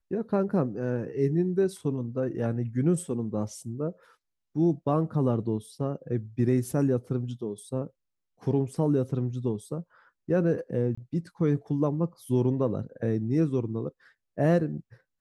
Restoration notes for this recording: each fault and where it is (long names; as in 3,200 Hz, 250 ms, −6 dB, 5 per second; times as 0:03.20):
0:10.95–0:10.97: drop-out 25 ms